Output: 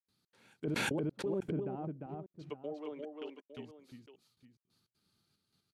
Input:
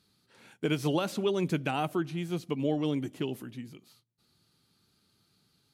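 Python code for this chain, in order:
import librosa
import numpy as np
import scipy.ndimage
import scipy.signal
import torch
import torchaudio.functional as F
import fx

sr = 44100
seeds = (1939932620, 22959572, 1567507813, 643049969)

p1 = fx.highpass(x, sr, hz=370.0, slope=24, at=(2.17, 3.57))
p2 = fx.env_lowpass_down(p1, sr, base_hz=620.0, full_db=-27.5)
p3 = fx.step_gate(p2, sr, bpm=182, pattern='.xx.xxxxx..x..', floor_db=-60.0, edge_ms=4.5)
p4 = p3 + fx.echo_multitap(p3, sr, ms=(350, 858), db=(-3.5, -13.0), dry=0)
p5 = fx.env_flatten(p4, sr, amount_pct=100, at=(0.67, 1.6))
y = p5 * librosa.db_to_amplitude(-8.5)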